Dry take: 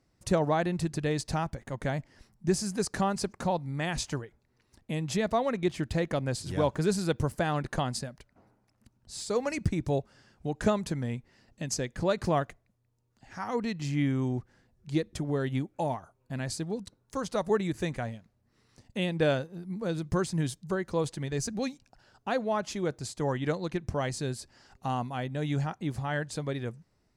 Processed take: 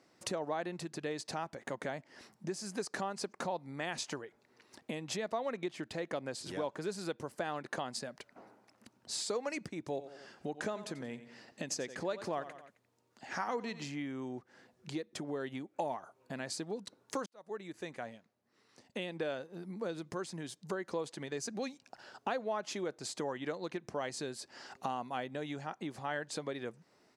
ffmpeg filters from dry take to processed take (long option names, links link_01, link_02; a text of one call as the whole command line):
ffmpeg -i in.wav -filter_complex "[0:a]asplit=3[link_01][link_02][link_03];[link_01]afade=type=out:start_time=9.94:duration=0.02[link_04];[link_02]aecho=1:1:89|178|267:0.168|0.0604|0.0218,afade=type=in:start_time=9.94:duration=0.02,afade=type=out:start_time=13.88:duration=0.02[link_05];[link_03]afade=type=in:start_time=13.88:duration=0.02[link_06];[link_04][link_05][link_06]amix=inputs=3:normalize=0,asplit=2[link_07][link_08];[link_07]atrim=end=17.26,asetpts=PTS-STARTPTS,afade=type=out:start_time=17.256:duration=0.004:curve=hsin[link_09];[link_08]atrim=start=17.26,asetpts=PTS-STARTPTS,afade=type=in:duration=3.77[link_10];[link_09][link_10]concat=n=2:v=0:a=1,acompressor=threshold=-42dB:ratio=6,highpass=300,highshelf=frequency=9900:gain=-10,volume=9dB" out.wav